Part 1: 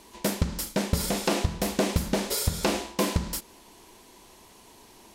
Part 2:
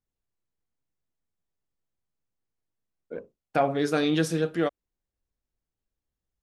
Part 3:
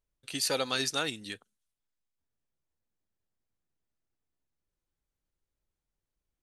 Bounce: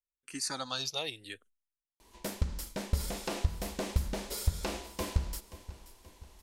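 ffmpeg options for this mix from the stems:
-filter_complex "[0:a]adelay=2000,volume=-10dB,asplit=2[a][b];[b]volume=-16.5dB[c];[2:a]agate=range=-16dB:threshold=-56dB:ratio=16:detection=peak,asplit=2[d][e];[e]afreqshift=-0.76[f];[d][f]amix=inputs=2:normalize=1,volume=-2dB[g];[c]aecho=0:1:529|1058|1587|2116|2645|3174:1|0.46|0.212|0.0973|0.0448|0.0206[h];[a][g][h]amix=inputs=3:normalize=0,asubboost=boost=6:cutoff=77"

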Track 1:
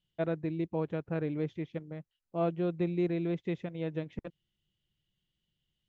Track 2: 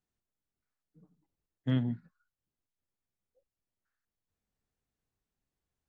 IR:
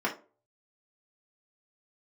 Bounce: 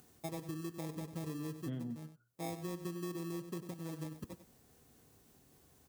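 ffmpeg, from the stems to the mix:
-filter_complex "[0:a]bandreject=f=480:w=12,acrusher=samples=30:mix=1:aa=0.000001,adelay=50,volume=-3dB,asplit=3[a][b][c];[b]volume=-22dB[d];[c]volume=-12.5dB[e];[1:a]acompressor=mode=upward:threshold=-37dB:ratio=2.5,volume=-1.5dB,asplit=2[f][g];[g]volume=-14dB[h];[2:a]atrim=start_sample=2205[i];[d][h]amix=inputs=2:normalize=0[j];[j][i]afir=irnorm=-1:irlink=0[k];[e]aecho=0:1:96:1[l];[a][f][k][l]amix=inputs=4:normalize=0,highpass=81,equalizer=f=1.8k:w=0.41:g=-10,acompressor=threshold=-38dB:ratio=5"

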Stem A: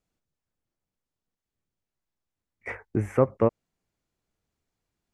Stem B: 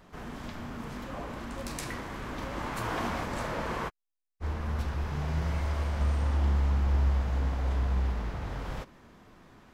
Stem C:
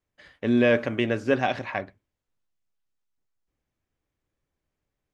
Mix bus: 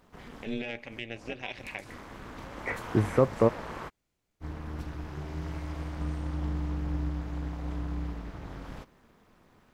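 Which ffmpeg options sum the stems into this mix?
-filter_complex "[0:a]alimiter=limit=-10.5dB:level=0:latency=1,volume=1.5dB[a];[1:a]acrusher=bits=11:mix=0:aa=0.000001,volume=-2.5dB[b];[2:a]highshelf=f=1.8k:t=q:w=3:g=6.5,aeval=exprs='0.75*(cos(1*acos(clip(val(0)/0.75,-1,1)))-cos(1*PI/2))+0.0422*(cos(3*acos(clip(val(0)/0.75,-1,1)))-cos(3*PI/2))':c=same,volume=-6dB,asplit=2[c][d];[d]apad=whole_len=429372[e];[b][e]sidechaincompress=threshold=-39dB:ratio=8:attack=24:release=157[f];[f][c]amix=inputs=2:normalize=0,tremolo=f=230:d=0.857,alimiter=limit=-21dB:level=0:latency=1:release=332,volume=0dB[g];[a][g]amix=inputs=2:normalize=0"

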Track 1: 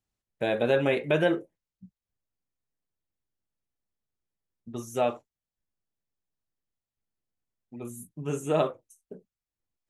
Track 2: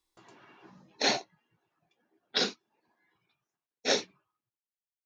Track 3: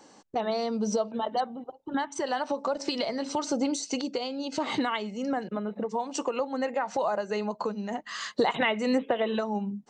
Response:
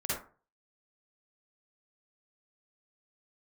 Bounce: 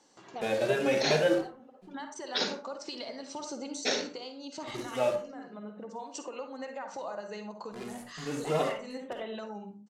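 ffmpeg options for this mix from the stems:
-filter_complex "[0:a]highpass=77,acrusher=bits=7:dc=4:mix=0:aa=0.000001,asplit=2[a][b];[b]adelay=2.5,afreqshift=2.7[c];[a][c]amix=inputs=2:normalize=1,volume=-2dB,asplit=3[d][e][f];[e]volume=-9.5dB[g];[1:a]alimiter=limit=-21.5dB:level=0:latency=1:release=295,volume=2dB,asplit=2[h][i];[i]volume=-9.5dB[j];[2:a]highshelf=f=3.9k:g=8,volume=-13.5dB,asplit=2[k][l];[l]volume=-9dB[m];[f]apad=whole_len=436187[n];[k][n]sidechaincompress=threshold=-42dB:ratio=8:attack=16:release=505[o];[3:a]atrim=start_sample=2205[p];[g][j][m]amix=inputs=3:normalize=0[q];[q][p]afir=irnorm=-1:irlink=0[r];[d][h][o][r]amix=inputs=4:normalize=0,lowpass=8.9k,lowshelf=f=65:g=-11.5"

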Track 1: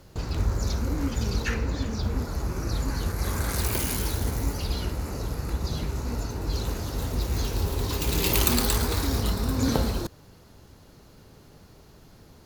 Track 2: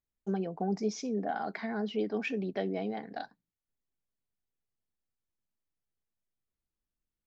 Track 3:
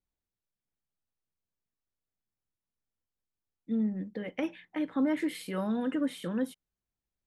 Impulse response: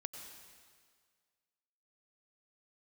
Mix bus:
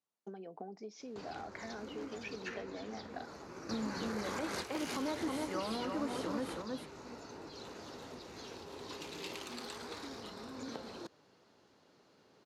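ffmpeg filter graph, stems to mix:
-filter_complex "[0:a]acompressor=threshold=-26dB:ratio=6,adelay=1000,volume=-1.5dB[a];[1:a]acompressor=threshold=-39dB:ratio=10,volume=-1.5dB[b];[2:a]firequalizer=gain_entry='entry(460,0);entry(1100,8);entry(1700,-4);entry(10000,14)':delay=0.05:min_phase=1,volume=-3dB,asplit=3[c][d][e];[d]volume=-5dB[f];[e]apad=whole_len=593331[g];[a][g]sidechaingate=range=-8dB:threshold=-51dB:ratio=16:detection=peak[h];[f]aecho=0:1:317:1[i];[h][b][c][i]amix=inputs=4:normalize=0,highpass=280,lowpass=5.4k,alimiter=level_in=3.5dB:limit=-24dB:level=0:latency=1:release=148,volume=-3.5dB"

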